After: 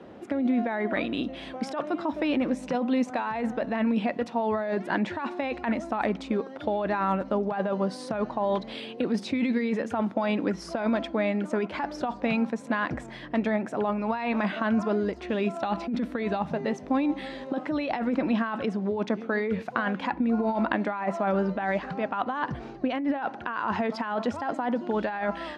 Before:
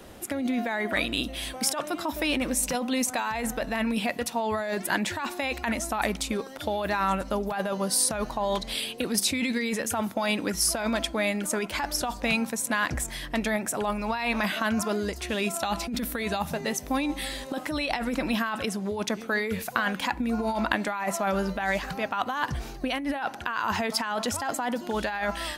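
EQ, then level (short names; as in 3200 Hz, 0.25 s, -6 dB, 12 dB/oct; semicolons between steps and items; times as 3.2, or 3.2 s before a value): BPF 210–5000 Hz; tilt -2.5 dB/oct; high shelf 3500 Hz -8.5 dB; 0.0 dB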